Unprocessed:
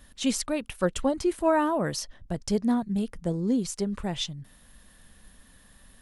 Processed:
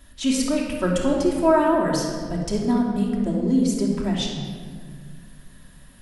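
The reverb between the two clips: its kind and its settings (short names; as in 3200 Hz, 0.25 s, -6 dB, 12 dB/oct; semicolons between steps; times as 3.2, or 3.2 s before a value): shoebox room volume 2700 m³, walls mixed, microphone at 2.9 m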